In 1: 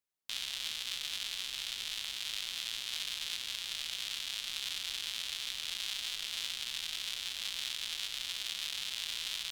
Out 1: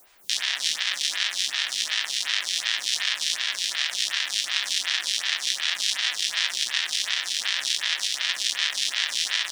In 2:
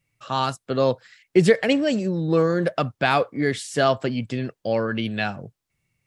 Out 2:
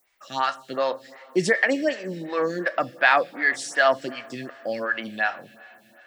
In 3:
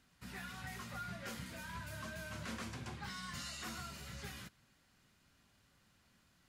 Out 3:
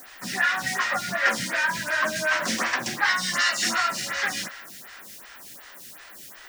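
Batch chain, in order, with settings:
cabinet simulation 330–9800 Hz, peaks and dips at 420 Hz -10 dB, 1.8 kHz +10 dB, 5.6 kHz +6 dB; added noise white -67 dBFS; two-slope reverb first 0.32 s, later 4.6 s, from -18 dB, DRR 10.5 dB; lamp-driven phase shifter 2.7 Hz; normalise loudness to -24 LUFS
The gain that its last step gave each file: +15.0 dB, +1.5 dB, +23.5 dB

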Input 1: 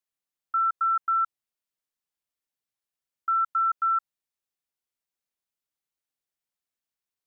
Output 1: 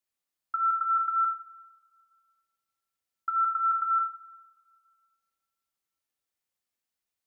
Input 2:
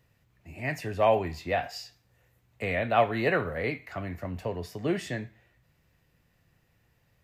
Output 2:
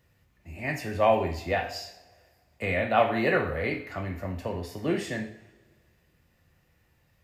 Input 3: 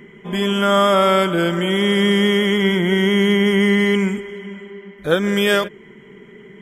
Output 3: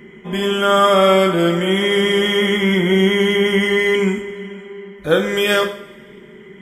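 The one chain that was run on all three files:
two-slope reverb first 0.5 s, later 2 s, from -21 dB, DRR 3 dB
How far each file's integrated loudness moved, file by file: -1.5 LU, +1.5 LU, +1.0 LU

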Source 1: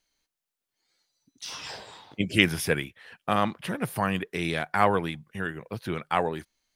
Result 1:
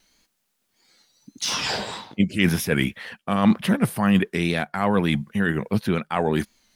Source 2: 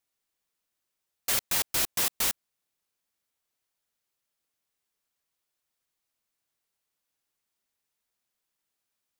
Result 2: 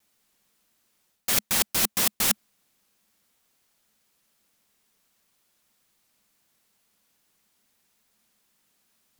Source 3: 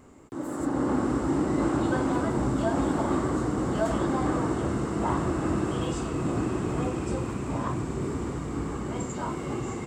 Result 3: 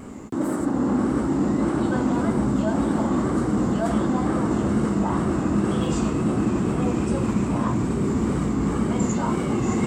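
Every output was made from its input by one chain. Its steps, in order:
reverse; compression 6:1, threshold -34 dBFS; reverse; wow and flutter 67 cents; peaking EQ 210 Hz +9.5 dB 0.48 oct; normalise loudness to -23 LUFS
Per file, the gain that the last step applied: +13.5 dB, +13.5 dB, +11.5 dB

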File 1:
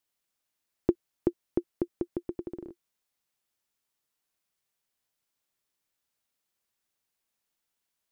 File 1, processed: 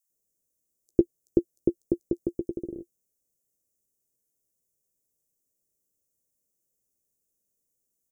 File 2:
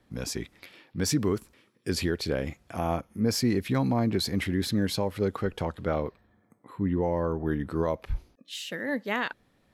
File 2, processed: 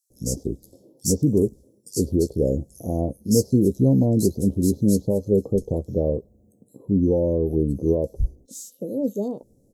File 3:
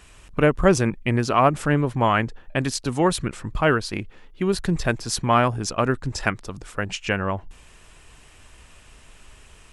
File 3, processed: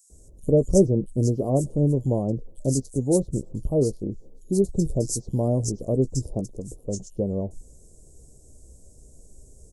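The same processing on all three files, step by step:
elliptic band-stop 530–6500 Hz, stop band 70 dB; doubling 15 ms -11.5 dB; bands offset in time highs, lows 100 ms, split 2.8 kHz; peak normalisation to -6 dBFS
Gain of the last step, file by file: +5.0 dB, +8.0 dB, +1.0 dB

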